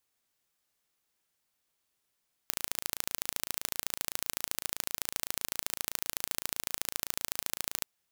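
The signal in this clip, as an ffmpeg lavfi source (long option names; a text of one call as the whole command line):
ffmpeg -f lavfi -i "aevalsrc='0.708*eq(mod(n,1586),0)*(0.5+0.5*eq(mod(n,3172),0))':duration=5.34:sample_rate=44100" out.wav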